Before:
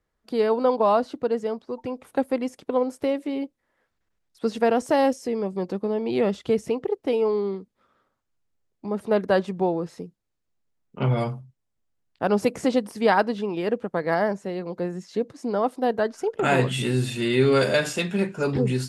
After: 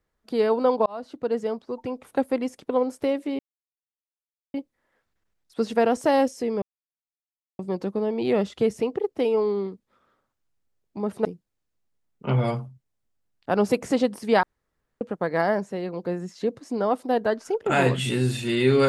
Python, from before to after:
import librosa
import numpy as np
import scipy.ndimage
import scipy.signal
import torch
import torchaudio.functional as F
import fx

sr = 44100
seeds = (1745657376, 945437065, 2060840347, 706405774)

y = fx.edit(x, sr, fx.fade_in_span(start_s=0.86, length_s=0.51),
    fx.insert_silence(at_s=3.39, length_s=1.15),
    fx.insert_silence(at_s=5.47, length_s=0.97),
    fx.cut(start_s=9.13, length_s=0.85),
    fx.room_tone_fill(start_s=13.16, length_s=0.58), tone=tone)